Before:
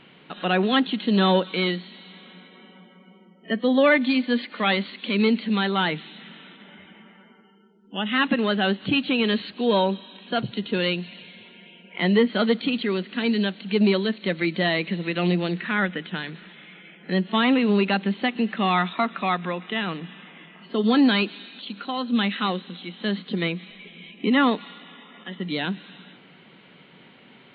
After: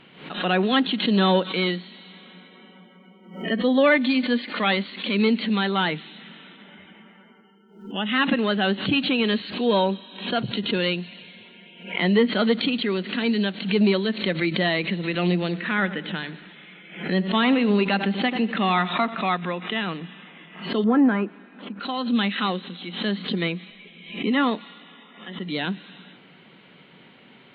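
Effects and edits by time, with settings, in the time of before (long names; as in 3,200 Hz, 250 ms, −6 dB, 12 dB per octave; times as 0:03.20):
0:15.33–0:19.27: tape delay 88 ms, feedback 54%, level −14 dB, low-pass 1,800 Hz
0:20.84–0:21.80: low-pass filter 1,700 Hz 24 dB per octave
0:23.70–0:25.55: tuned comb filter 73 Hz, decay 0.17 s, mix 40%
whole clip: background raised ahead of every attack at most 100 dB per second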